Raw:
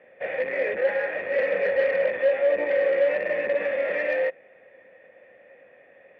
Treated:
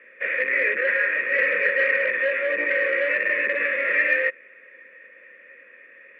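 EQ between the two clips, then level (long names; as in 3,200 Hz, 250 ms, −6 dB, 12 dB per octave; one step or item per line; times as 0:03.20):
high-pass filter 87 Hz 12 dB per octave
flat-topped bell 1,600 Hz +12.5 dB
phaser with its sweep stopped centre 330 Hz, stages 4
0.0 dB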